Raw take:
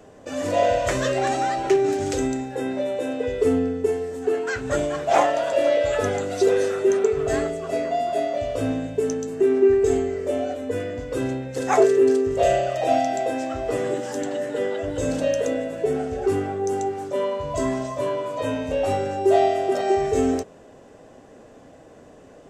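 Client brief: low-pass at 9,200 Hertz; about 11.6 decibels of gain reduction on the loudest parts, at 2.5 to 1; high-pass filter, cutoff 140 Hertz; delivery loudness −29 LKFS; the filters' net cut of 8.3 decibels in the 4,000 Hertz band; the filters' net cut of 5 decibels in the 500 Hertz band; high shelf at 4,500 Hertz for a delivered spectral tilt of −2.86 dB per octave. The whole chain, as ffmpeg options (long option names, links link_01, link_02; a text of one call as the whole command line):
ffmpeg -i in.wav -af "highpass=140,lowpass=9200,equalizer=frequency=500:width_type=o:gain=-6.5,equalizer=frequency=4000:width_type=o:gain=-7.5,highshelf=frequency=4500:gain=-7.5,acompressor=threshold=-35dB:ratio=2.5,volume=6dB" out.wav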